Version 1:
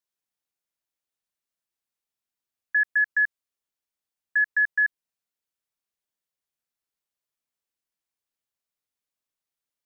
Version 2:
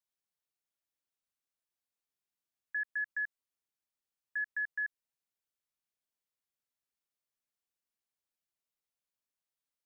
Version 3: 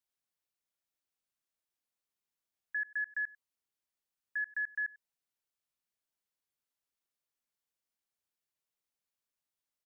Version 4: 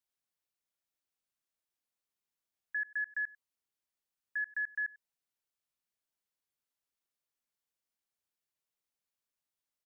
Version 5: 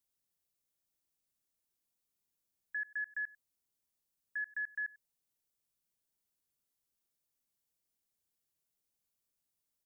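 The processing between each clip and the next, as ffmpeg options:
-af "alimiter=level_in=1dB:limit=-24dB:level=0:latency=1,volume=-1dB,volume=-5dB"
-af "aecho=1:1:96:0.0794"
-af anull
-af "equalizer=f=1.6k:w=0.33:g=-10,volume=7dB"

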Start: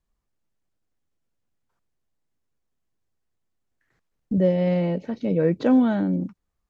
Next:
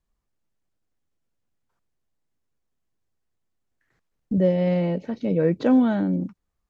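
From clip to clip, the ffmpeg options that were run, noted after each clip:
-af anull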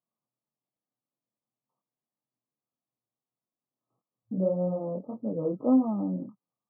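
-af "afftfilt=real='re*between(b*sr/4096,110,1300)':imag='im*between(b*sr/4096,110,1300)':win_size=4096:overlap=0.75,flanger=delay=22.5:depth=5:speed=1.7,equalizer=f=160:t=o:w=0.67:g=-8,equalizer=f=400:t=o:w=0.67:g=-7,equalizer=f=1k:t=o:w=0.67:g=-3"

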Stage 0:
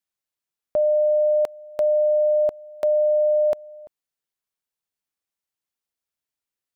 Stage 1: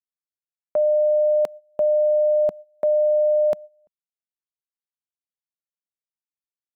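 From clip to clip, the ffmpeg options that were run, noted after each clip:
-af "agate=range=-19dB:threshold=-34dB:ratio=16:detection=peak,equalizer=f=190:w=1.6:g=9"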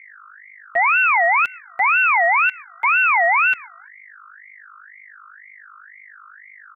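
-af "aecho=1:1:6.5:0.9,aeval=exprs='val(0)+0.01*(sin(2*PI*50*n/s)+sin(2*PI*2*50*n/s)/2+sin(2*PI*3*50*n/s)/3+sin(2*PI*4*50*n/s)/4+sin(2*PI*5*50*n/s)/5)':c=same,aeval=exprs='val(0)*sin(2*PI*1700*n/s+1700*0.25/2*sin(2*PI*2*n/s))':c=same"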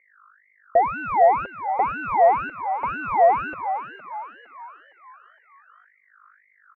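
-filter_complex "[0:a]acontrast=83,lowpass=f=520:t=q:w=4.1,asplit=6[a][b][c][d][e][f];[b]adelay=461,afreqshift=85,volume=-10.5dB[g];[c]adelay=922,afreqshift=170,volume=-17.6dB[h];[d]adelay=1383,afreqshift=255,volume=-24.8dB[i];[e]adelay=1844,afreqshift=340,volume=-31.9dB[j];[f]adelay=2305,afreqshift=425,volume=-39dB[k];[a][g][h][i][j][k]amix=inputs=6:normalize=0,volume=-2dB"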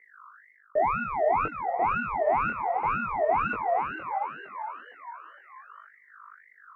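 -af "areverse,acompressor=threshold=-29dB:ratio=4,areverse,afreqshift=-71,flanger=delay=19:depth=6.9:speed=1.4,volume=7.5dB"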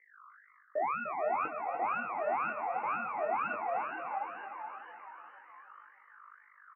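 -filter_complex "[0:a]highpass=410,equalizer=f=420:t=q:w=4:g=-9,equalizer=f=660:t=q:w=4:g=-8,equalizer=f=960:t=q:w=4:g=-9,equalizer=f=1.4k:t=q:w=4:g=-5,equalizer=f=2k:t=q:w=4:g=-6,lowpass=f=2.4k:w=0.5412,lowpass=f=2.4k:w=1.3066,asplit=2[a][b];[b]aecho=0:1:300|600|900|1200|1500|1800:0.299|0.161|0.0871|0.047|0.0254|0.0137[c];[a][c]amix=inputs=2:normalize=0"

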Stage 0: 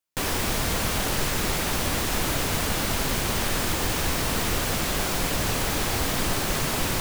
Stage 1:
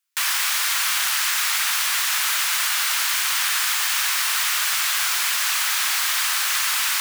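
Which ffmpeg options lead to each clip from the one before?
-af "highpass=f=1.2k:w=0.5412,highpass=f=1.2k:w=1.3066,volume=7.5dB"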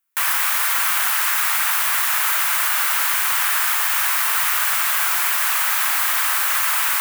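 -af "equalizer=f=4.7k:w=0.53:g=-14,volume=8dB"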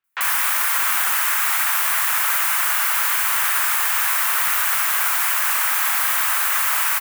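-filter_complex "[0:a]acrossover=split=4100[a][b];[b]adelay=40[c];[a][c]amix=inputs=2:normalize=0"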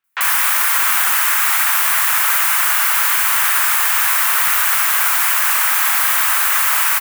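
-af "lowshelf=f=400:g=-4.5,volume=4.5dB"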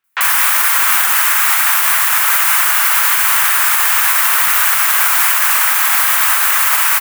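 -af "alimiter=level_in=5dB:limit=-1dB:release=50:level=0:latency=1,volume=-1dB"

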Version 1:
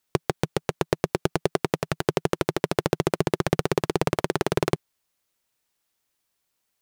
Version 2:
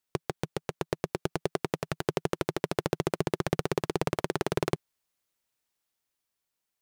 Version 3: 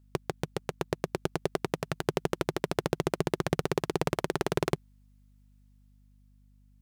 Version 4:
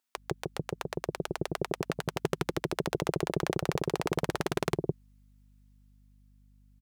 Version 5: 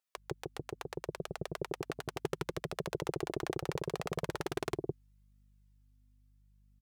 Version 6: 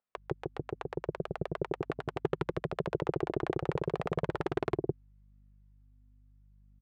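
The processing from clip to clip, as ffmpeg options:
-af "dynaudnorm=f=250:g=11:m=11.5dB,volume=-8dB"
-af "aeval=exprs='val(0)+0.00112*(sin(2*PI*50*n/s)+sin(2*PI*2*50*n/s)/2+sin(2*PI*3*50*n/s)/3+sin(2*PI*4*50*n/s)/4+sin(2*PI*5*50*n/s)/5)':c=same"
-filter_complex "[0:a]acrossover=split=590[a][b];[a]adelay=160[c];[c][b]amix=inputs=2:normalize=0"
-af "flanger=delay=1.5:depth=1.4:regen=-34:speed=0.74:shape=triangular,volume=-2.5dB"
-af "adynamicsmooth=sensitivity=1:basefreq=1.7k,volume=5dB"

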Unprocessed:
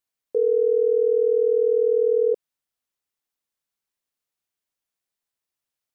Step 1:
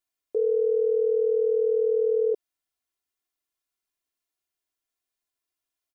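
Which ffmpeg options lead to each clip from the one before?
-af "aecho=1:1:2.9:0.71,volume=-3dB"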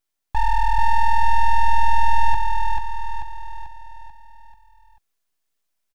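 -af "aeval=exprs='abs(val(0))':c=same,aecho=1:1:439|878|1317|1756|2195|2634:0.631|0.309|0.151|0.0742|0.0364|0.0178,volume=7.5dB"

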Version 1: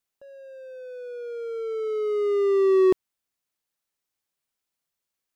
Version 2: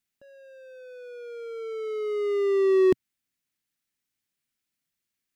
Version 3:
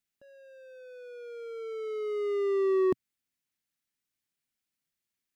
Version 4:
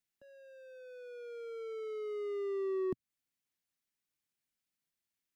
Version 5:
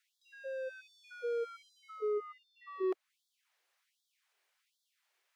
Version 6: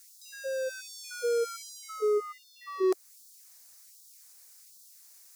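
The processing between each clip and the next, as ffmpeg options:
-af "equalizer=f=125:t=o:w=1:g=4,equalizer=f=250:t=o:w=1:g=6,equalizer=f=500:t=o:w=1:g=-6,equalizer=f=1k:t=o:w=1:g=-6,equalizer=f=2k:t=o:w=1:g=4"
-af "asoftclip=type=tanh:threshold=-17dB,volume=-3.5dB"
-filter_complex "[0:a]acrossover=split=260[a][b];[b]acompressor=threshold=-39dB:ratio=2.5[c];[a][c]amix=inputs=2:normalize=0,volume=-3dB"
-filter_complex "[0:a]asplit=2[a][b];[b]highpass=f=720:p=1,volume=26dB,asoftclip=type=tanh:threshold=-27dB[c];[a][c]amix=inputs=2:normalize=0,lowpass=f=1.4k:p=1,volume=-6dB,afftfilt=real='re*gte(b*sr/1024,320*pow(3300/320,0.5+0.5*sin(2*PI*1.3*pts/sr)))':imag='im*gte(b*sr/1024,320*pow(3300/320,0.5+0.5*sin(2*PI*1.3*pts/sr)))':win_size=1024:overlap=0.75,volume=1dB"
-af "aexciter=amount=11.8:drive=3.7:freq=4.6k,volume=7.5dB"

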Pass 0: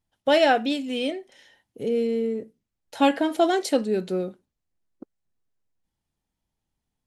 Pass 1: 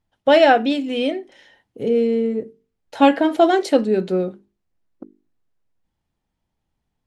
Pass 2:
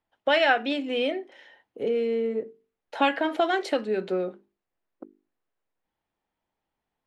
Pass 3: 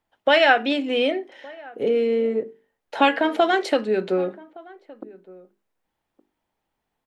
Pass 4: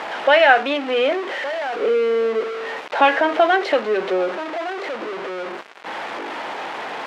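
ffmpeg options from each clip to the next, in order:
-af "lowpass=f=2.7k:p=1,bandreject=f=50:t=h:w=6,bandreject=f=100:t=h:w=6,bandreject=f=150:t=h:w=6,bandreject=f=200:t=h:w=6,bandreject=f=250:t=h:w=6,bandreject=f=300:t=h:w=6,bandreject=f=350:t=h:w=6,bandreject=f=400:t=h:w=6,bandreject=f=450:t=h:w=6,volume=6.5dB"
-filter_complex "[0:a]bass=f=250:g=-15,treble=f=4k:g=-11,acrossover=split=180|1200[a][b][c];[b]acompressor=threshold=-24dB:ratio=6[d];[a][d][c]amix=inputs=3:normalize=0"
-filter_complex "[0:a]asplit=2[a][b];[b]adelay=1166,volume=-22dB,highshelf=f=4k:g=-26.2[c];[a][c]amix=inputs=2:normalize=0,volume=5dB"
-af "aeval=exprs='val(0)+0.5*0.0794*sgn(val(0))':c=same,highpass=460,lowpass=2.6k,volume=3dB"

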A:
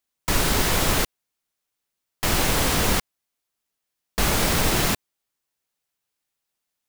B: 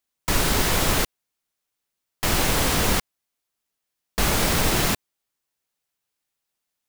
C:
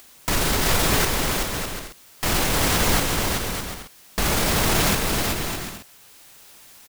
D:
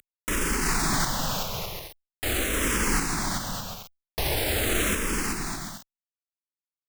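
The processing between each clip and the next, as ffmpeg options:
-af anull
-filter_complex "[0:a]acompressor=mode=upward:threshold=-34dB:ratio=2.5,alimiter=limit=-18dB:level=0:latency=1:release=26,asplit=2[a][b];[b]aecho=0:1:380|608|744.8|826.9|876.1:0.631|0.398|0.251|0.158|0.1[c];[a][c]amix=inputs=2:normalize=0,volume=6dB"
-filter_complex "[0:a]acrusher=bits=5:mix=0:aa=0.000001,asplit=2[a][b];[b]afreqshift=-0.43[c];[a][c]amix=inputs=2:normalize=1,volume=-2dB"

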